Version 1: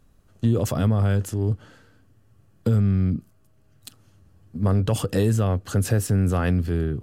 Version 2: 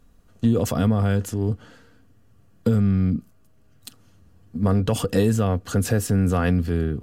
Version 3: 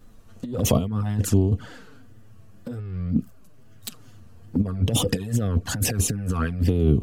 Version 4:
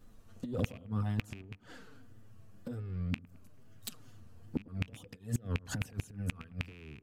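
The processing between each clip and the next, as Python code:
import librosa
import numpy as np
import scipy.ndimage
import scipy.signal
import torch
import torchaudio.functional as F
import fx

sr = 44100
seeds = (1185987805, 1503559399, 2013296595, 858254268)

y1 = fx.peak_eq(x, sr, hz=10000.0, db=-2.5, octaves=0.32)
y1 = y1 + 0.33 * np.pad(y1, (int(4.2 * sr / 1000.0), 0))[:len(y1)]
y1 = y1 * 10.0 ** (1.5 / 20.0)
y2 = fx.wow_flutter(y1, sr, seeds[0], rate_hz=2.1, depth_cents=86.0)
y2 = fx.over_compress(y2, sr, threshold_db=-24.0, ratio=-0.5)
y2 = fx.env_flanger(y2, sr, rest_ms=11.2, full_db=-20.5)
y2 = y2 * 10.0 ** (4.0 / 20.0)
y3 = fx.rattle_buzz(y2, sr, strikes_db=-19.0, level_db=-11.0)
y3 = fx.gate_flip(y3, sr, shuts_db=-12.0, range_db=-24)
y3 = fx.echo_wet_lowpass(y3, sr, ms=109, feedback_pct=60, hz=1500.0, wet_db=-21)
y3 = y3 * 10.0 ** (-7.5 / 20.0)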